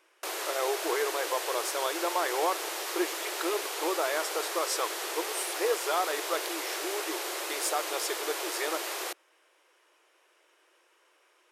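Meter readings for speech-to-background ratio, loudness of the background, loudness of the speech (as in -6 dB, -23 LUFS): 0.5 dB, -33.5 LUFS, -33.0 LUFS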